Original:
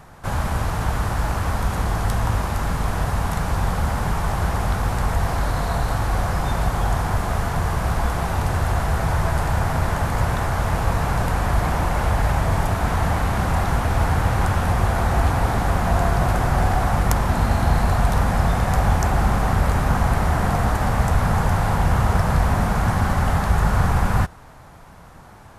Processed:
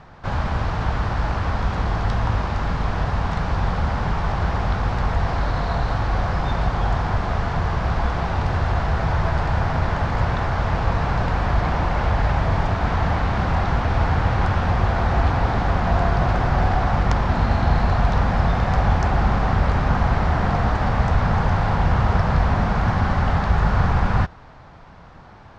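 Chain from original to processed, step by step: low-pass 5 kHz 24 dB/octave

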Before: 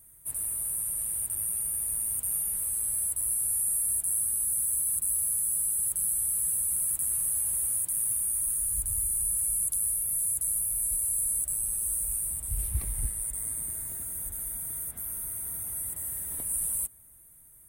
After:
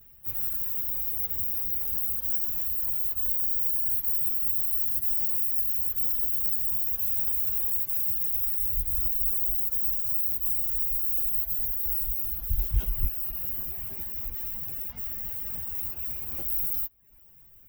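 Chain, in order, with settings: frequency axis rescaled in octaves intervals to 115%; reverb removal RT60 0.68 s; trim +9 dB

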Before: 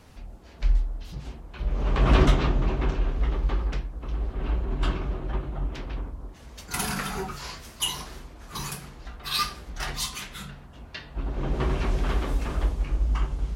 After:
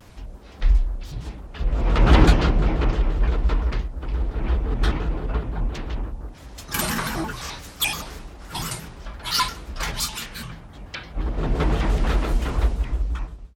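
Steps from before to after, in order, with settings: fade out at the end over 0.88 s; vibrato with a chosen wave square 5.8 Hz, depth 250 cents; trim +4.5 dB

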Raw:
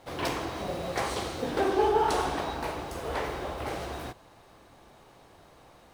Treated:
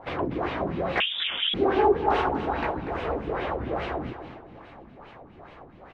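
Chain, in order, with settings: in parallel at +0.5 dB: compression, threshold -38 dBFS, peak gain reduction 17 dB; on the sum: LFO low-pass sine 2.4 Hz 210–2800 Hz; feedback delay 243 ms, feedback 42%, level -10.5 dB; 1.00–1.54 s: frequency inversion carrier 3.6 kHz; warped record 78 rpm, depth 100 cents

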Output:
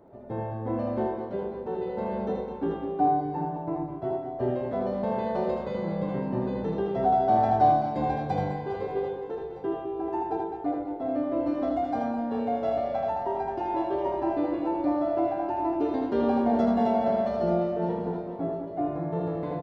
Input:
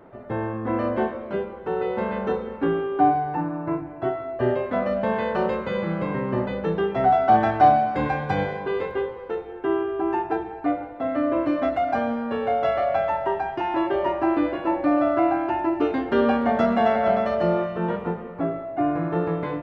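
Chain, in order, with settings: high-order bell 1.9 kHz -10 dB; reverse bouncing-ball echo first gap 80 ms, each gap 1.6×, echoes 5; trim -5.5 dB

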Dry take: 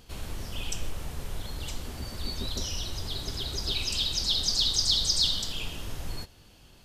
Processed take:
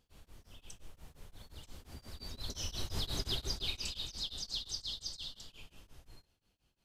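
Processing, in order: Doppler pass-by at 3.10 s, 10 m/s, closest 3.1 m; tremolo of two beating tones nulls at 5.7 Hz; trim +1 dB

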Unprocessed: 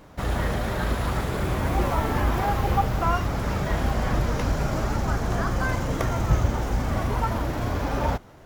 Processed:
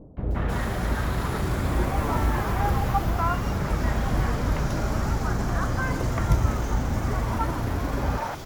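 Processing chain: reverse; upward compressor, threshold -24 dBFS; reverse; three bands offset in time lows, mids, highs 170/310 ms, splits 590/3000 Hz

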